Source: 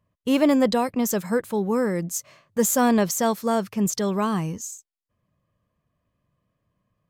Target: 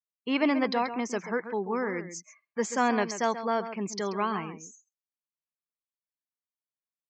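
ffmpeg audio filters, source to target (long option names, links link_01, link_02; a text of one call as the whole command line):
ffmpeg -i in.wav -af "highpass=340,equalizer=frequency=550:width_type=q:width=4:gain=-9,equalizer=frequency=2200:width_type=q:width=4:gain=6,equalizer=frequency=3600:width_type=q:width=4:gain=-5,lowpass=frequency=5400:width=0.5412,lowpass=frequency=5400:width=1.3066,aecho=1:1:134:0.282,afftdn=noise_reduction=30:noise_floor=-45,volume=-2dB" out.wav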